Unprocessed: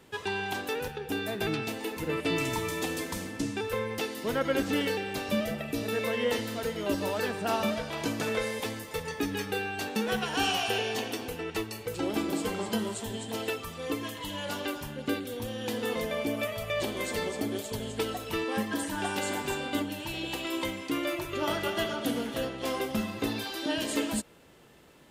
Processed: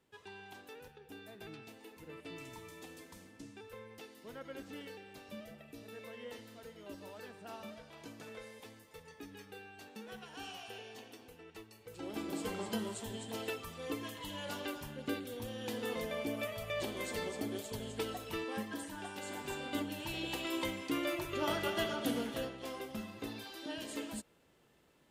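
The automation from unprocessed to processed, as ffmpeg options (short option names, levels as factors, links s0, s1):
-af "volume=1.33,afade=t=in:st=11.8:d=0.71:silence=0.251189,afade=t=out:st=18.19:d=0.95:silence=0.446684,afade=t=in:st=19.14:d=0.95:silence=0.334965,afade=t=out:st=22.22:d=0.47:silence=0.421697"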